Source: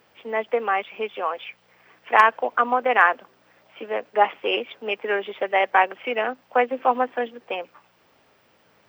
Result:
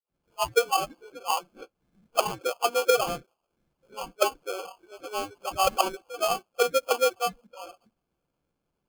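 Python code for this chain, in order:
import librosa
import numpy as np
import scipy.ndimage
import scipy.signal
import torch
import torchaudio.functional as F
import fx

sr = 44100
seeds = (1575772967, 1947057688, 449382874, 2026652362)

y = fx.spec_delay(x, sr, highs='late', ms=451)
y = fx.auto_wah(y, sr, base_hz=350.0, top_hz=2100.0, q=4.2, full_db=-17.0, direction='down')
y = fx.low_shelf(y, sr, hz=400.0, db=-7.0)
y = fx.sample_hold(y, sr, seeds[0], rate_hz=1900.0, jitter_pct=0)
y = fx.noise_reduce_blind(y, sr, reduce_db=16)
y = F.gain(torch.from_numpy(y), 8.0).numpy()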